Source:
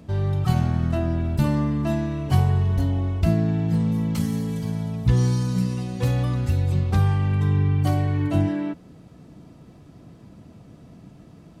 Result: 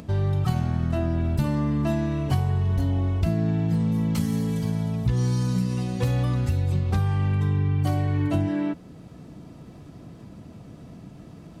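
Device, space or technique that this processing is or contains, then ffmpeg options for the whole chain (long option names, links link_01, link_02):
upward and downward compression: -af "acompressor=mode=upward:threshold=-41dB:ratio=2.5,acompressor=threshold=-22dB:ratio=4,volume=2dB"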